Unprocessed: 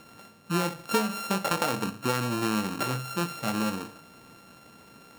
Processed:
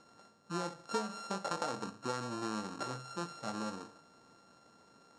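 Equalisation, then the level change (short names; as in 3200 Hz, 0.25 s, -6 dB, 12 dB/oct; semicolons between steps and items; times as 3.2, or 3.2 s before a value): LPF 7400 Hz 24 dB/oct; low shelf 280 Hz -10 dB; bell 2600 Hz -12 dB 1 oct; -6.0 dB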